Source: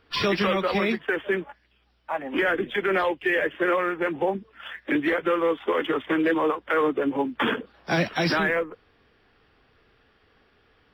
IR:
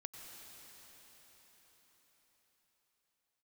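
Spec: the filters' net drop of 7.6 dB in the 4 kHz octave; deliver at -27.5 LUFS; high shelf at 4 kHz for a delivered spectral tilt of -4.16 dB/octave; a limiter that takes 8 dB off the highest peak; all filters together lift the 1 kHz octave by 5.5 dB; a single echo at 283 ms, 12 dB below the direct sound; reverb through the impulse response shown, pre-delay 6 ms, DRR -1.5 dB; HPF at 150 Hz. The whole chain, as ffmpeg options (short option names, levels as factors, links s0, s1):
-filter_complex "[0:a]highpass=150,equalizer=f=1000:t=o:g=8,highshelf=f=4000:g=-8,equalizer=f=4000:t=o:g=-6.5,alimiter=limit=0.133:level=0:latency=1,aecho=1:1:283:0.251,asplit=2[s0][s1];[1:a]atrim=start_sample=2205,adelay=6[s2];[s1][s2]afir=irnorm=-1:irlink=0,volume=1.78[s3];[s0][s3]amix=inputs=2:normalize=0,volume=0.631"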